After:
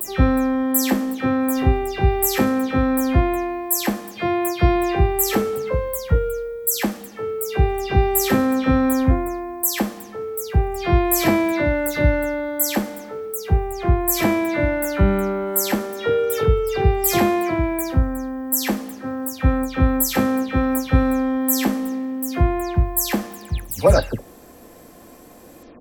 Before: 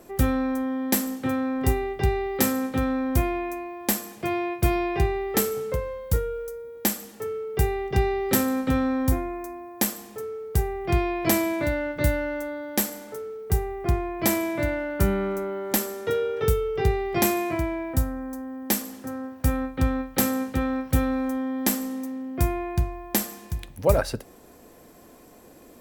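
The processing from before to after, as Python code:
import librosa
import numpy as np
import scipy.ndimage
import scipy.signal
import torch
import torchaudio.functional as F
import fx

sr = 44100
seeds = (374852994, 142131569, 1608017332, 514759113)

y = fx.spec_delay(x, sr, highs='early', ms=178)
y = y * librosa.db_to_amplitude(6.0)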